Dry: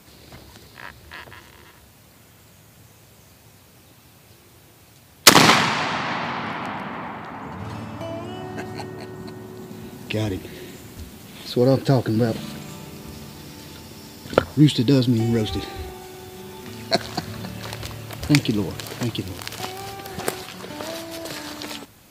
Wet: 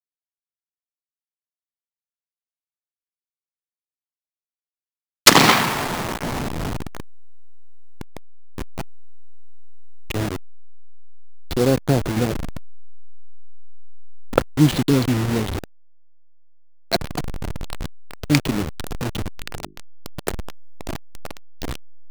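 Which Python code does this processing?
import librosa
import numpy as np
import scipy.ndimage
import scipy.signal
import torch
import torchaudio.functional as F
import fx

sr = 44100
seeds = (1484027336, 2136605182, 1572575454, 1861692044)

y = fx.delta_hold(x, sr, step_db=-19.0)
y = fx.hum_notches(y, sr, base_hz=50, count=8, at=(19.38, 19.8))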